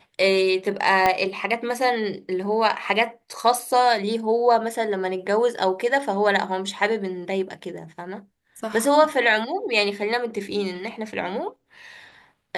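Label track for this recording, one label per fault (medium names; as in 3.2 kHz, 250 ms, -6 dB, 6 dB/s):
1.060000	1.060000	pop -6 dBFS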